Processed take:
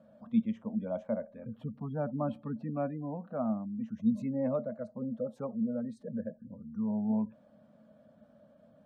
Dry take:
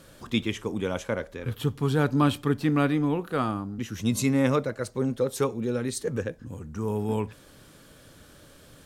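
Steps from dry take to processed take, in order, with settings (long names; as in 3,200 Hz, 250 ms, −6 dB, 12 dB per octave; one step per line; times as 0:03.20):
gate on every frequency bin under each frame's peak −25 dB strong
pair of resonant band-passes 370 Hz, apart 1.5 octaves
level +3 dB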